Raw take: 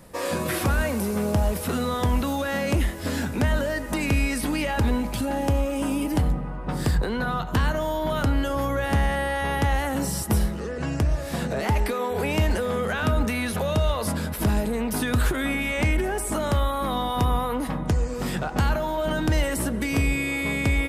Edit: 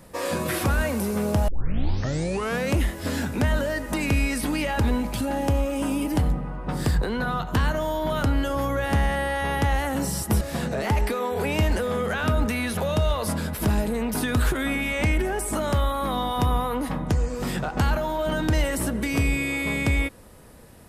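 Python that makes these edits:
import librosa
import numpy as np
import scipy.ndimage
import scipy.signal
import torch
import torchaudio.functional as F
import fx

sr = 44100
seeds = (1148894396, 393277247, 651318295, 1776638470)

y = fx.edit(x, sr, fx.tape_start(start_s=1.48, length_s=1.24),
    fx.cut(start_s=10.41, length_s=0.79), tone=tone)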